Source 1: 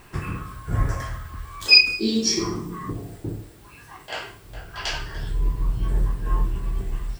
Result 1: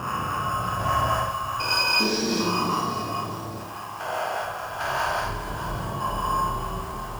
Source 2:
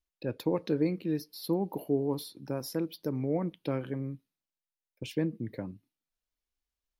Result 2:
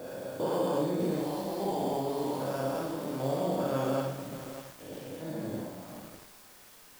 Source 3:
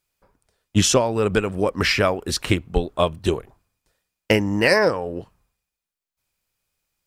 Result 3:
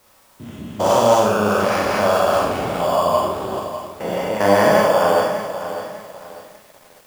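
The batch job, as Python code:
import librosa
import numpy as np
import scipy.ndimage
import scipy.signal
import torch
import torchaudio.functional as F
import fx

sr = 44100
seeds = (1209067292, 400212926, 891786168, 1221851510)

p1 = fx.spec_steps(x, sr, hold_ms=400)
p2 = scipy.signal.sosfilt(scipy.signal.butter(2, 96.0, 'highpass', fs=sr, output='sos'), p1)
p3 = fx.band_shelf(p2, sr, hz=930.0, db=14.0, octaves=1.7)
p4 = fx.notch(p3, sr, hz=5200.0, q=20.0)
p5 = fx.harmonic_tremolo(p4, sr, hz=4.9, depth_pct=50, crossover_hz=710.0)
p6 = fx.dmg_noise_colour(p5, sr, seeds[0], colour='white', level_db=-57.0)
p7 = fx.sample_hold(p6, sr, seeds[1], rate_hz=4000.0, jitter_pct=0)
p8 = p6 + F.gain(torch.from_numpy(p7), -6.5).numpy()
p9 = fx.rev_schroeder(p8, sr, rt60_s=0.74, comb_ms=30, drr_db=-2.0)
p10 = fx.echo_crushed(p9, sr, ms=600, feedback_pct=35, bits=6, wet_db=-11.0)
y = F.gain(torch.from_numpy(p10), -2.5).numpy()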